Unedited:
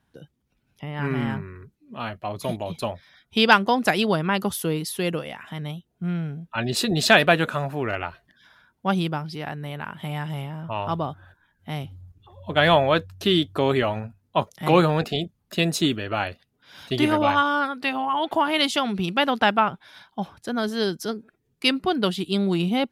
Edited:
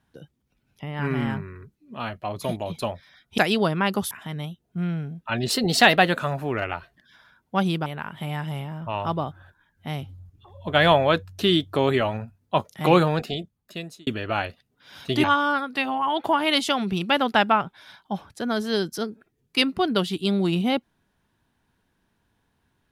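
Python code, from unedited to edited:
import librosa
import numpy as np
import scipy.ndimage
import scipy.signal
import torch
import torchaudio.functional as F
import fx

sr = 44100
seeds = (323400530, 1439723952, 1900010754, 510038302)

y = fx.edit(x, sr, fx.cut(start_s=3.38, length_s=0.48),
    fx.cut(start_s=4.59, length_s=0.78),
    fx.speed_span(start_s=6.78, length_s=0.7, speed=1.08),
    fx.cut(start_s=9.17, length_s=0.51),
    fx.fade_out_span(start_s=14.79, length_s=1.1),
    fx.cut(start_s=17.06, length_s=0.25), tone=tone)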